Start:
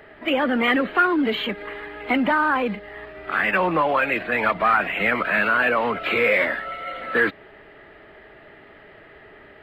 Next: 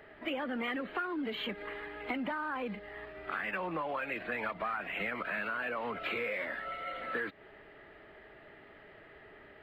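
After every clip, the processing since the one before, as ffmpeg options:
-af "acompressor=threshold=0.0562:ratio=6,volume=0.398"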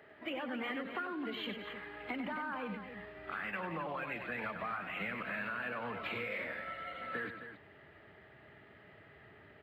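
-af "asubboost=boost=3:cutoff=190,highpass=f=82:w=0.5412,highpass=f=82:w=1.3066,aecho=1:1:96.21|265.3:0.398|0.316,volume=0.631"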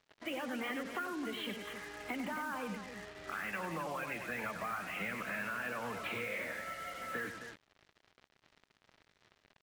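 -af "acrusher=bits=7:mix=0:aa=0.5"

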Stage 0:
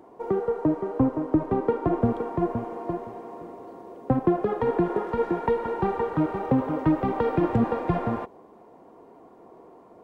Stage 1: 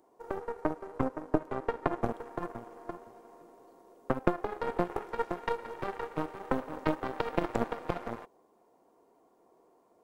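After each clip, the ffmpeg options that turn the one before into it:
-af "aeval=exprs='0.376*(cos(1*acos(clip(val(0)/0.376,-1,1)))-cos(1*PI/2))+0.168*(cos(2*acos(clip(val(0)/0.376,-1,1)))-cos(2*PI/2))+0.119*(cos(3*acos(clip(val(0)/0.376,-1,1)))-cos(3*PI/2))+0.0106*(cos(5*acos(clip(val(0)/0.376,-1,1)))-cos(5*PI/2))':c=same,bass=f=250:g=-6,treble=f=4000:g=13"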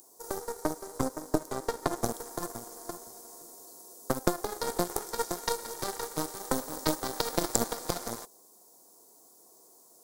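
-af "aexciter=amount=11.7:drive=8.5:freq=4200"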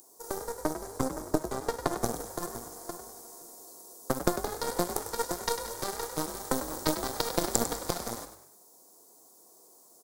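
-filter_complex "[0:a]asplit=5[s0][s1][s2][s3][s4];[s1]adelay=99,afreqshift=47,volume=0.316[s5];[s2]adelay=198,afreqshift=94,volume=0.123[s6];[s3]adelay=297,afreqshift=141,volume=0.0479[s7];[s4]adelay=396,afreqshift=188,volume=0.0188[s8];[s0][s5][s6][s7][s8]amix=inputs=5:normalize=0"

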